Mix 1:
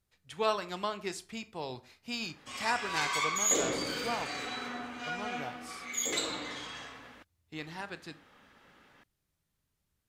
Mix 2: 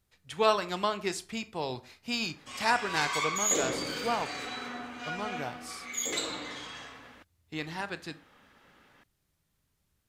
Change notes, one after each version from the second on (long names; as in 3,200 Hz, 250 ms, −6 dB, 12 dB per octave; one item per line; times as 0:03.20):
speech +5.0 dB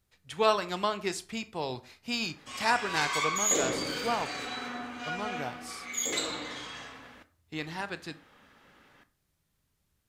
background: send on